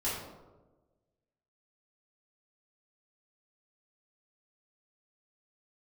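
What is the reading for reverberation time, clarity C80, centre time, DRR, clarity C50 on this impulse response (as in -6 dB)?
1.2 s, 4.0 dB, 66 ms, -10.5 dB, 1.0 dB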